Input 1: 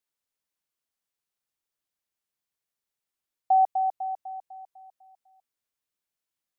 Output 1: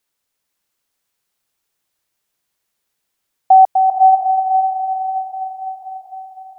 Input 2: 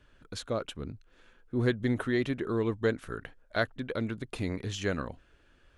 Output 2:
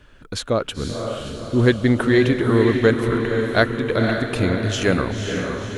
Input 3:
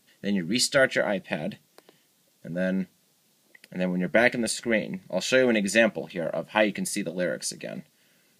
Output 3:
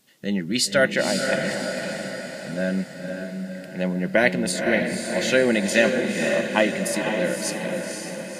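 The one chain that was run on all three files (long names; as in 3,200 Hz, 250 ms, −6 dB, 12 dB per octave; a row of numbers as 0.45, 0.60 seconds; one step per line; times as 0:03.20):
feedback delay with all-pass diffusion 517 ms, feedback 54%, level −4.5 dB
normalise the peak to −3 dBFS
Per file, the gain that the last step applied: +12.0, +11.5, +1.5 decibels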